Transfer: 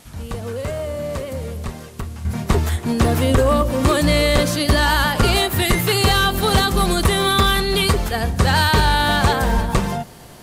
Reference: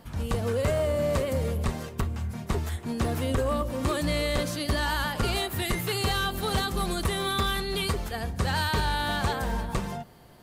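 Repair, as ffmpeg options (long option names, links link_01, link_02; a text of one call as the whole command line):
ffmpeg -i in.wav -filter_complex "[0:a]asplit=3[link_01][link_02][link_03];[link_01]afade=type=out:start_time=9.55:duration=0.02[link_04];[link_02]highpass=frequency=140:width=0.5412,highpass=frequency=140:width=1.3066,afade=type=in:start_time=9.55:duration=0.02,afade=type=out:start_time=9.67:duration=0.02[link_05];[link_03]afade=type=in:start_time=9.67:duration=0.02[link_06];[link_04][link_05][link_06]amix=inputs=3:normalize=0,agate=range=-21dB:threshold=-23dB,asetnsamples=nb_out_samples=441:pad=0,asendcmd='2.25 volume volume -11dB',volume=0dB" out.wav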